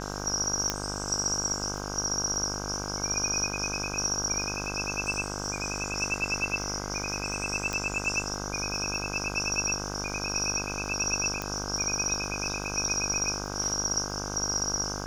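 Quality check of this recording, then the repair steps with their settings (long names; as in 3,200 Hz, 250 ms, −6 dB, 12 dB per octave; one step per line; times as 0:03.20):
mains buzz 50 Hz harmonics 32 −36 dBFS
surface crackle 48 per second −39 dBFS
0:00.70: click −10 dBFS
0:07.73: click −17 dBFS
0:11.42: click −16 dBFS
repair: click removal
hum removal 50 Hz, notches 32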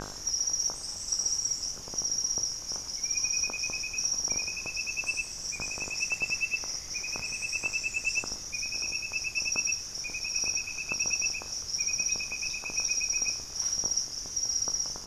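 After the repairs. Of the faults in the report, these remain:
0:07.73: click
0:11.42: click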